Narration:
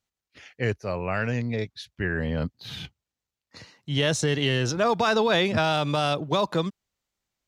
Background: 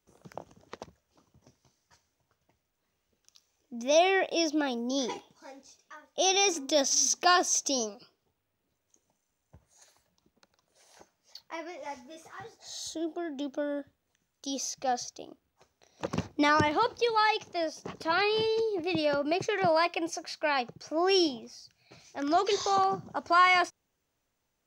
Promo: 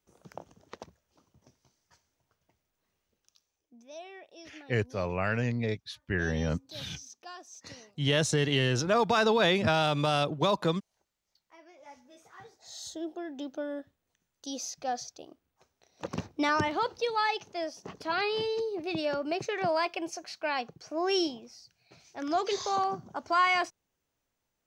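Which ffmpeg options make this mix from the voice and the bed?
-filter_complex "[0:a]adelay=4100,volume=0.75[s0];[1:a]volume=7.94,afade=t=out:st=2.96:d=0.9:silence=0.0891251,afade=t=in:st=11.4:d=1.46:silence=0.105925[s1];[s0][s1]amix=inputs=2:normalize=0"

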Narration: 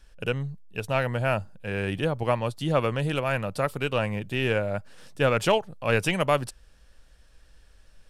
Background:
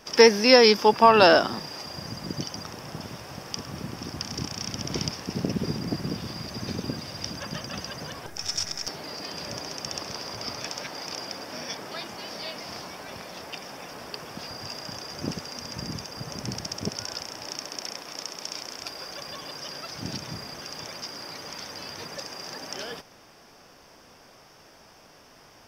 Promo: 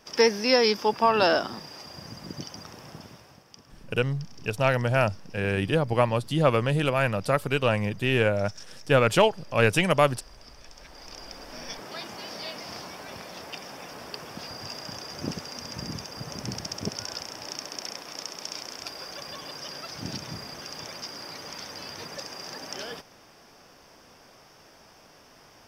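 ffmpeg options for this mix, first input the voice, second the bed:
-filter_complex "[0:a]adelay=3700,volume=1.33[s0];[1:a]volume=3.35,afade=t=out:st=2.86:d=0.59:silence=0.266073,afade=t=in:st=10.72:d=1.4:silence=0.158489[s1];[s0][s1]amix=inputs=2:normalize=0"

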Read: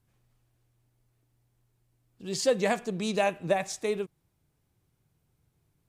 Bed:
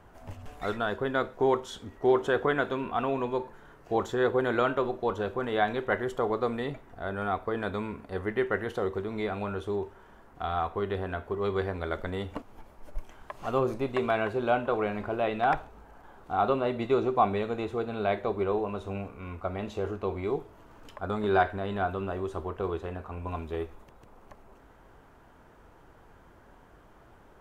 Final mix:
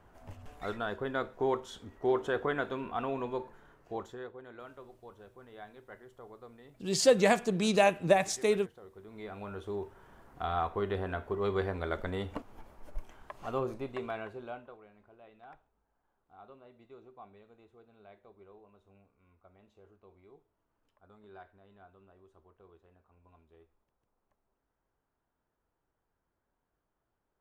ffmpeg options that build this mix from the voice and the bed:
-filter_complex "[0:a]adelay=4600,volume=1.26[s0];[1:a]volume=5.62,afade=t=out:st=3.55:d=0.77:silence=0.141254,afade=t=in:st=8.92:d=1.38:silence=0.0944061,afade=t=out:st=12.69:d=2.11:silence=0.0501187[s1];[s0][s1]amix=inputs=2:normalize=0"

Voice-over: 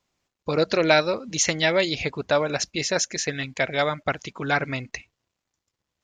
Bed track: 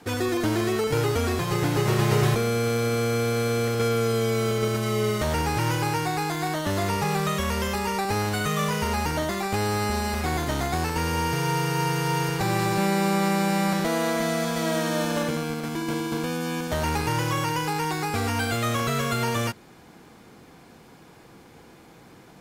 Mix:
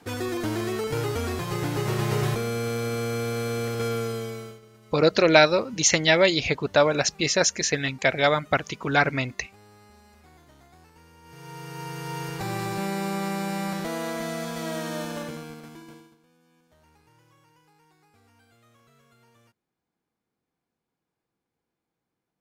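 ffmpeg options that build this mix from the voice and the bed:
-filter_complex "[0:a]adelay=4450,volume=1.33[s0];[1:a]volume=7.94,afade=t=out:st=3.94:d=0.67:silence=0.0630957,afade=t=in:st=11.22:d=1.25:silence=0.0794328,afade=t=out:st=14.95:d=1.21:silence=0.0354813[s1];[s0][s1]amix=inputs=2:normalize=0"

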